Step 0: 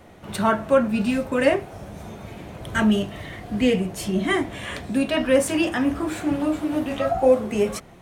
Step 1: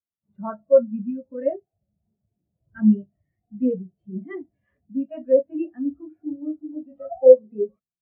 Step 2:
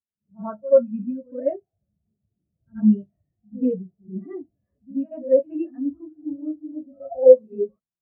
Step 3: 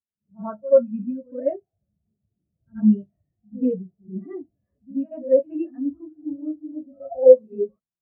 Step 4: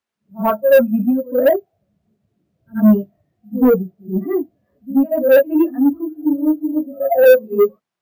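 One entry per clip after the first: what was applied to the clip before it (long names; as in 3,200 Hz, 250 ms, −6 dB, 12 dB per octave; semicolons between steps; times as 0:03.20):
low-pass filter 2,900 Hz 12 dB per octave; every bin expanded away from the loudest bin 2.5 to 1; level +4.5 dB
echo ahead of the sound 81 ms −18 dB; low-pass that shuts in the quiet parts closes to 470 Hz, open at −14 dBFS
no processing that can be heard
mid-hump overdrive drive 29 dB, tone 1,200 Hz, clips at −1 dBFS; bad sample-rate conversion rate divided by 3×, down none, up hold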